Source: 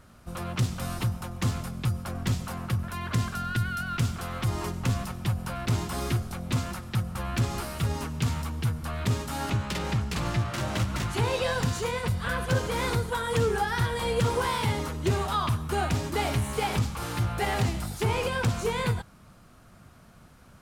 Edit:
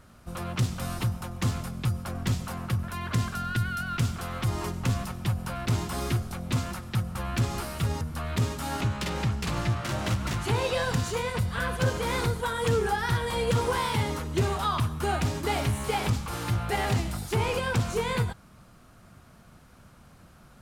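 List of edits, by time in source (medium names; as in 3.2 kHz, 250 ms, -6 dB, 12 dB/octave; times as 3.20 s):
8.01–8.70 s: delete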